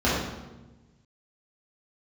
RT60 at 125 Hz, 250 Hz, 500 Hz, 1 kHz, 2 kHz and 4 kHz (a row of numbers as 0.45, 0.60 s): 1.8, 1.5, 1.2, 1.0, 0.90, 0.80 s